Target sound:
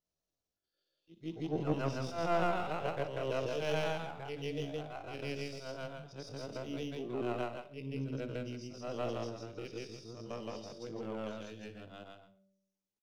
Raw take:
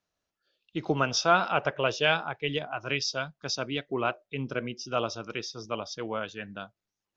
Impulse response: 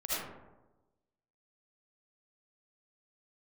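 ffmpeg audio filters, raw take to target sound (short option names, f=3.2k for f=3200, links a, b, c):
-filter_complex "[0:a]afftfilt=real='re':imag='-im':win_size=8192:overlap=0.75,aeval=exprs='0.2*(cos(1*acos(clip(val(0)/0.2,-1,1)))-cos(1*PI/2))+0.0355*(cos(2*acos(clip(val(0)/0.2,-1,1)))-cos(2*PI/2))':c=same,equalizer=f=1.5k:t=o:w=2.2:g=-6.5,acrossover=split=310|940|3200[a][b][c][d];[c]aeval=exprs='max(val(0),0)':c=same[e];[d]acompressor=threshold=-55dB:ratio=8[f];[a][b][e][f]amix=inputs=4:normalize=0,bandreject=f=193.5:t=h:w=4,bandreject=f=387:t=h:w=4,bandreject=f=580.5:t=h:w=4,atempo=0.55,aecho=1:1:60|120|180|240:0.2|0.0738|0.0273|0.0101"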